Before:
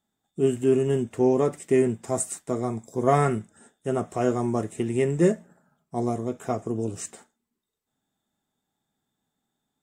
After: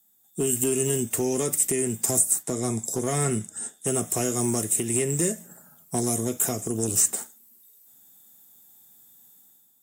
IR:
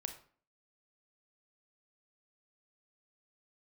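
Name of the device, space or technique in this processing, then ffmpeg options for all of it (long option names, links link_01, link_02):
FM broadcast chain: -filter_complex "[0:a]asettb=1/sr,asplit=3[link_01][link_02][link_03];[link_01]atrim=end=2.434[link_04];[link_02]atrim=start=2.43:end=3.87,asetpts=PTS-STARTPTS,afade=type=in:duration=0.004:curve=qsin,afade=type=out:start_time=1.436:duration=0.004:curve=qsin,lowpass=9300[link_05];[link_03]atrim=start=3.866[link_06];[link_04][link_05]acrossfade=duration=0.004:curve1=hsin:curve2=qsin[link_07];[link_07][link_06]acrossfade=duration=0.004:curve1=qsin:curve2=hsin,highpass=frequency=74:width=0.5412,highpass=frequency=74:width=1.3066,dynaudnorm=framelen=130:gausssize=7:maxgain=9.5dB,acrossover=split=490|1800[link_08][link_09][link_10];[link_08]acompressor=threshold=-20dB:ratio=4[link_11];[link_09]acompressor=threshold=-34dB:ratio=4[link_12];[link_10]acompressor=threshold=-35dB:ratio=4[link_13];[link_11][link_12][link_13]amix=inputs=3:normalize=0,aemphasis=mode=production:type=50fm,alimiter=limit=-16dB:level=0:latency=1:release=380,asoftclip=type=hard:threshold=-18.5dB,lowpass=frequency=15000:width=0.5412,lowpass=frequency=15000:width=1.3066,aemphasis=mode=production:type=50fm"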